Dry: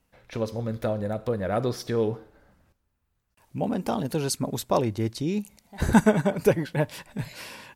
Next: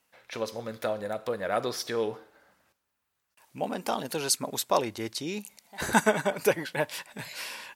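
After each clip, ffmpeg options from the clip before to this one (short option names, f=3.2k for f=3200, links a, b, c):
-af "highpass=f=1k:p=1,volume=4dB"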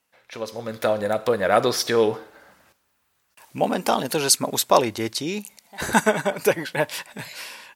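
-af "dynaudnorm=f=130:g=11:m=12.5dB,volume=-1dB"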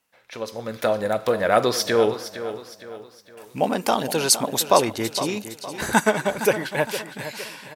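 -af "aecho=1:1:462|924|1386|1848:0.251|0.105|0.0443|0.0186"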